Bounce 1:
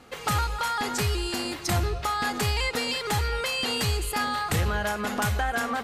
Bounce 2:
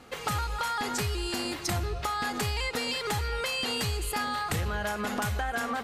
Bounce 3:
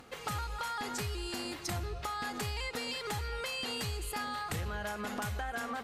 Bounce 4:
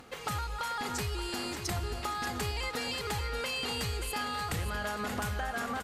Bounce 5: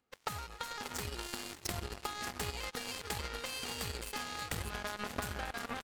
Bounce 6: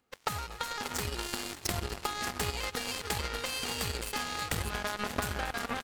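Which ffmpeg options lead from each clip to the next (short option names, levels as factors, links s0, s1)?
-af "acompressor=threshold=0.0447:ratio=6"
-af "acompressor=mode=upward:threshold=0.00631:ratio=2.5,volume=0.473"
-af "aecho=1:1:581|1162|1743|2324|2905:0.376|0.154|0.0632|0.0259|0.0106,volume=1.26"
-af "aeval=exprs='0.0794*(cos(1*acos(clip(val(0)/0.0794,-1,1)))-cos(1*PI/2))+0.0251*(cos(3*acos(clip(val(0)/0.0794,-1,1)))-cos(3*PI/2))+0.000562*(cos(5*acos(clip(val(0)/0.0794,-1,1)))-cos(5*PI/2))+0.00126*(cos(7*acos(clip(val(0)/0.0794,-1,1)))-cos(7*PI/2))':c=same,volume=1.68"
-af "aecho=1:1:240:0.1,volume=1.88"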